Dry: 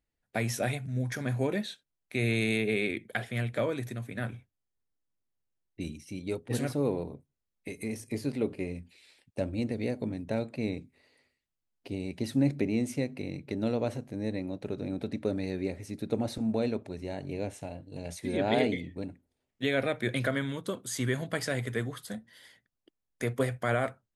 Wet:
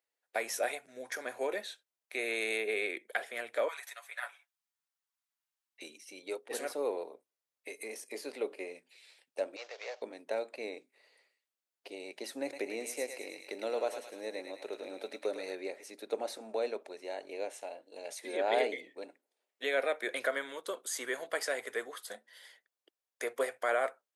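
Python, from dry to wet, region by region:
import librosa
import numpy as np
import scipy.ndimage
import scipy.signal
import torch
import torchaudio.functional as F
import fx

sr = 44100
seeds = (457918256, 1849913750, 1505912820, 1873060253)

y = fx.chain(x, sr, fx.highpass(hz=850.0, slope=24),
    fx.comb(ms=7.1, depth=0.88), at=(3.68, 5.82))
y = fx.chain(y, sr, fx.cvsd(bps=32000),
    fx.highpass(hz=590.0, slope=24), at=(9.56, 10.02))
y = fx.chain(y, sr, fx.high_shelf(hz=8300.0, db=6.0),
    fx.echo_thinned(ms=106, feedback_pct=57, hz=940.0, wet_db=-5), at=(12.42, 15.55))
y = scipy.signal.sosfilt(scipy.signal.butter(4, 440.0, 'highpass', fs=sr, output='sos'), y)
y = fx.dynamic_eq(y, sr, hz=3400.0, q=1.2, threshold_db=-47.0, ratio=4.0, max_db=-4)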